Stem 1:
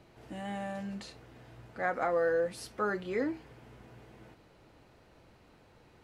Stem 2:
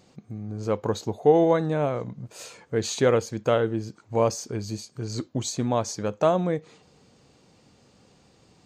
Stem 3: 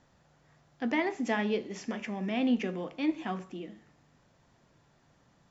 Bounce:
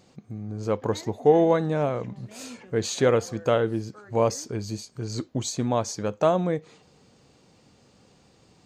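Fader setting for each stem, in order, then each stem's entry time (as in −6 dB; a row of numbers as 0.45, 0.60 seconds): −17.0, 0.0, −16.5 decibels; 1.15, 0.00, 0.00 seconds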